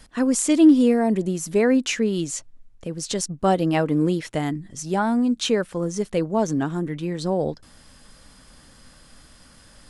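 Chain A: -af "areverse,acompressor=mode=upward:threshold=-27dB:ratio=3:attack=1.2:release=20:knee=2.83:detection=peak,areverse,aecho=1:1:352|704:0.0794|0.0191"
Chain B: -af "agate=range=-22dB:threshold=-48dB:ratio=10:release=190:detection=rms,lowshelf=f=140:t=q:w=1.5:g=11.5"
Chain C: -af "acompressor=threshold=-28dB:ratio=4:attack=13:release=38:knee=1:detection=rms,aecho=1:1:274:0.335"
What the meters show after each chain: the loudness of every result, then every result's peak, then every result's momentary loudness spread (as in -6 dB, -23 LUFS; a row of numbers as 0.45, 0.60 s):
-22.0, -23.0, -29.0 LUFS; -6.0, -7.5, -13.0 dBFS; 19, 10, 6 LU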